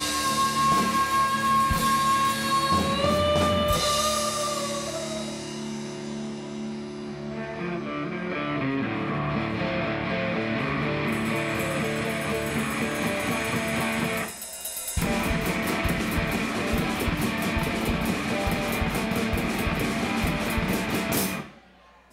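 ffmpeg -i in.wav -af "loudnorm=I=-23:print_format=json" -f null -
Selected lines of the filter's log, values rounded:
"input_i" : "-26.0",
"input_tp" : "-10.4",
"input_lra" : "6.8",
"input_thresh" : "-36.1",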